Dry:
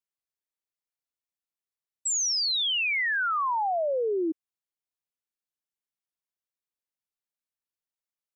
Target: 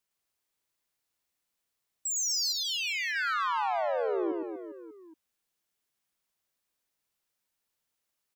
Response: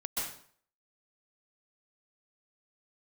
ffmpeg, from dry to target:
-filter_complex "[0:a]asettb=1/sr,asplit=3[s0][s1][s2];[s0]atrim=end=2.524[s3];[s1]atrim=start=2.52:end=3.16,asetpts=PTS-STARTPTS,afade=t=in:d=0.004:c=qsin,afade=t=out:st=0.636:d=0.004:c=qsin,agate=range=0.0224:threshold=0.141:ratio=3:detection=peak[s4];[s2]atrim=start=3.156[s5];[s3][s4]acrossfade=d=0.004:c1=hsin:c2=qsin[s6];[s6][s5]acrossfade=d=0.004:c1=qsin:c2=hsin,alimiter=level_in=2.99:limit=0.0631:level=0:latency=1:release=152,volume=0.335,asoftclip=type=tanh:threshold=0.0141,aecho=1:1:110|242|400.4|590.5|818.6:0.631|0.398|0.251|0.158|0.1,volume=2.66"

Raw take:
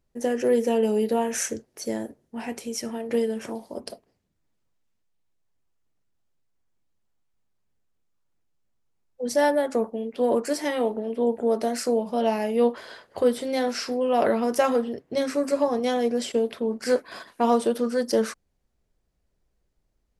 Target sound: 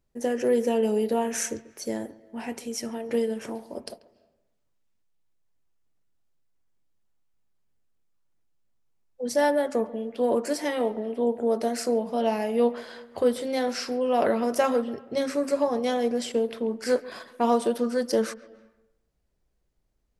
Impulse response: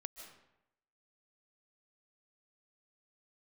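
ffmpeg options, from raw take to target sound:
-filter_complex "[0:a]asplit=2[s0][s1];[1:a]atrim=start_sample=2205,lowpass=3200,adelay=138[s2];[s1][s2]afir=irnorm=-1:irlink=0,volume=0.211[s3];[s0][s3]amix=inputs=2:normalize=0,volume=0.841"

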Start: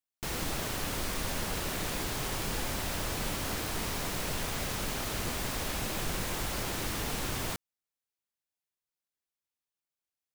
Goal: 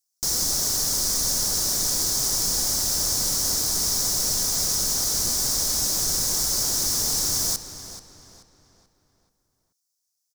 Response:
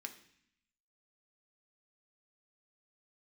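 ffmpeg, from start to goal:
-filter_complex "[0:a]highshelf=f=3900:t=q:w=3:g=13,asplit=2[s0][s1];[s1]adelay=433,lowpass=f=4400:p=1,volume=0.299,asplit=2[s2][s3];[s3]adelay=433,lowpass=f=4400:p=1,volume=0.43,asplit=2[s4][s5];[s5]adelay=433,lowpass=f=4400:p=1,volume=0.43,asplit=2[s6][s7];[s7]adelay=433,lowpass=f=4400:p=1,volume=0.43,asplit=2[s8][s9];[s9]adelay=433,lowpass=f=4400:p=1,volume=0.43[s10];[s0][s2][s4][s6][s8][s10]amix=inputs=6:normalize=0"

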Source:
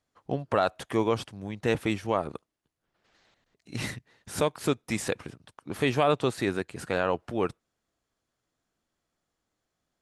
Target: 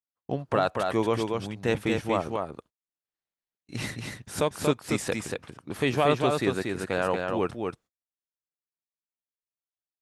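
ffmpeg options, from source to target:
-af "aecho=1:1:234:0.631,agate=range=0.0224:threshold=0.00282:ratio=16:detection=peak"

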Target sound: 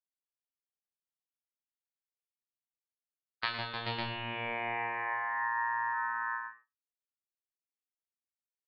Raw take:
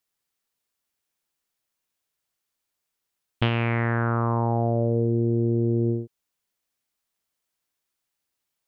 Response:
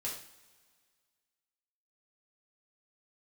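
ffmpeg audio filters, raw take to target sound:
-filter_complex "[0:a]agate=range=0.0398:threshold=0.0891:ratio=16:detection=peak,lowpass=f=2900:w=0.5412,lowpass=f=2900:w=1.3066,lowshelf=f=350:g=-9.5,acrossover=split=280[s0][s1];[s0]asoftclip=type=tanh:threshold=0.0112[s2];[s2][s1]amix=inputs=2:normalize=0,aecho=1:1:109|156|306|433|553:0.355|0.473|0.398|0.596|0.562,aeval=exprs='val(0)*sin(2*PI*1400*n/s)':c=same,asplit=2[s3][s4];[1:a]atrim=start_sample=2205,atrim=end_sample=6174[s5];[s4][s5]afir=irnorm=-1:irlink=0,volume=0.841[s6];[s3][s6]amix=inputs=2:normalize=0,volume=0.794"

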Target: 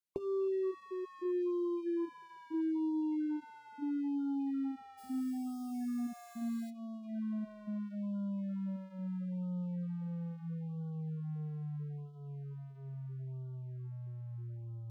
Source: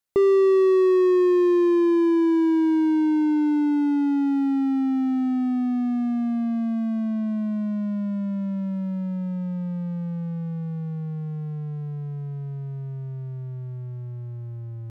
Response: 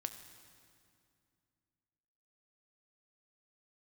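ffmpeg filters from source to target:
-filter_complex "[0:a]acrossover=split=1100|2300[s0][s1][s2];[s0]acompressor=threshold=0.0708:ratio=4[s3];[s1]acompressor=threshold=0.00282:ratio=4[s4];[s2]acompressor=threshold=0.00112:ratio=4[s5];[s3][s4][s5]amix=inputs=3:normalize=0,asplit=3[s6][s7][s8];[s6]afade=t=out:st=4.97:d=0.02[s9];[s7]acrusher=bits=6:mode=log:mix=0:aa=0.000001,afade=t=in:st=4.97:d=0.02,afade=t=out:st=6.69:d=0.02[s10];[s8]afade=t=in:st=6.69:d=0.02[s11];[s9][s10][s11]amix=inputs=3:normalize=0,flanger=delay=6.1:depth=5.2:regen=-62:speed=0.36:shape=sinusoidal,asplit=2[s12][s13];[1:a]atrim=start_sample=2205[s14];[s13][s14]afir=irnorm=-1:irlink=0,volume=0.266[s15];[s12][s15]amix=inputs=2:normalize=0,afftfilt=real='re*(1-between(b*sr/1024,260*pow(2100/260,0.5+0.5*sin(2*PI*0.76*pts/sr))/1.41,260*pow(2100/260,0.5+0.5*sin(2*PI*0.76*pts/sr))*1.41))':imag='im*(1-between(b*sr/1024,260*pow(2100/260,0.5+0.5*sin(2*PI*0.76*pts/sr))/1.41,260*pow(2100/260,0.5+0.5*sin(2*PI*0.76*pts/sr))*1.41))':win_size=1024:overlap=0.75,volume=0.398"

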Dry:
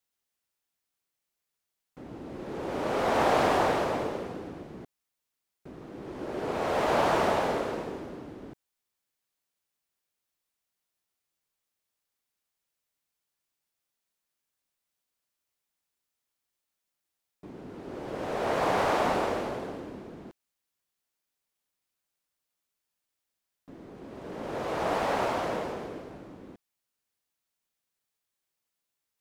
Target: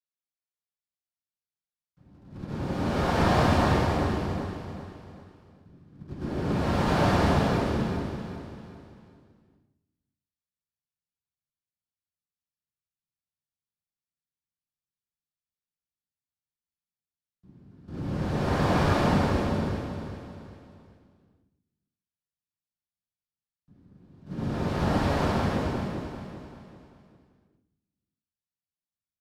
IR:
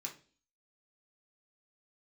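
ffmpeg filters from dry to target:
-filter_complex "[0:a]agate=range=0.112:threshold=0.0126:ratio=16:detection=peak,adynamicequalizer=threshold=0.00355:dfrequency=160:dqfactor=1.7:tfrequency=160:tqfactor=1.7:attack=5:release=100:ratio=0.375:range=2.5:mode=cutabove:tftype=bell[s0];[1:a]atrim=start_sample=2205,asetrate=29988,aresample=44100[s1];[s0][s1]afir=irnorm=-1:irlink=0,asubboost=boost=6.5:cutoff=230,asplit=2[s2][s3];[s3]asetrate=33038,aresample=44100,atempo=1.33484,volume=0.631[s4];[s2][s4]amix=inputs=2:normalize=0,acrossover=split=360|910|7200[s5][s6][s7][s8];[s8]aeval=exprs='clip(val(0),-1,0.00335)':c=same[s9];[s5][s6][s7][s9]amix=inputs=4:normalize=0,aecho=1:1:391|782|1173|1564:0.355|0.142|0.0568|0.0227"

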